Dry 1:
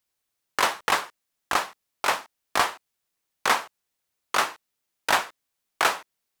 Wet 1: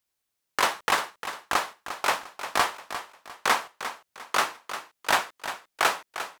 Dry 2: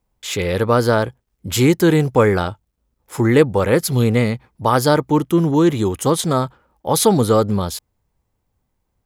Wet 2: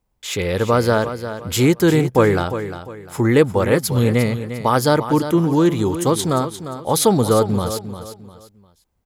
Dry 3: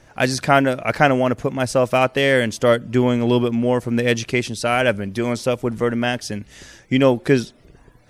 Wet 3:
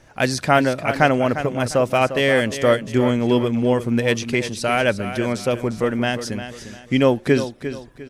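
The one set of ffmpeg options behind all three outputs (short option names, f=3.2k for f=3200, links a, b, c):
-af "aecho=1:1:351|702|1053:0.282|0.0902|0.0289,volume=-1dB"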